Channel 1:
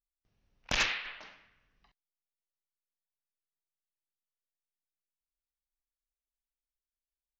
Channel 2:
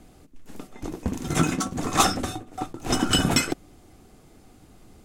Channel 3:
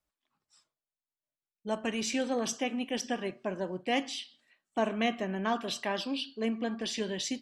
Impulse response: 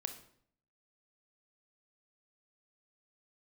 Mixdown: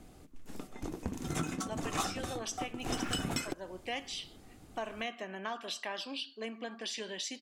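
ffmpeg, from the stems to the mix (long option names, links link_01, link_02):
-filter_complex "[0:a]lowpass=1800,aeval=exprs='val(0)*gte(abs(val(0)),0.00794)':channel_layout=same,adelay=2250,volume=0.5dB[link_01];[1:a]volume=-3.5dB[link_02];[2:a]highpass=frequency=720:poles=1,volume=-0.5dB,asplit=2[link_03][link_04];[link_04]apad=whole_len=425422[link_05];[link_01][link_05]sidechaincompress=threshold=-37dB:ratio=8:attack=16:release=408[link_06];[link_06][link_02][link_03]amix=inputs=3:normalize=0,acompressor=threshold=-36dB:ratio=2.5"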